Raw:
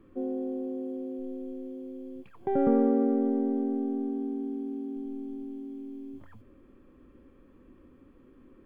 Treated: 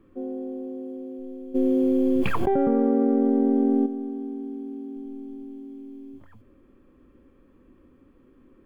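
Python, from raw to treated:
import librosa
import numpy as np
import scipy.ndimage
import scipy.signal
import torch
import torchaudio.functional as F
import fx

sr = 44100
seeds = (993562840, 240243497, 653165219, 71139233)

y = fx.env_flatten(x, sr, amount_pct=100, at=(1.54, 3.85), fade=0.02)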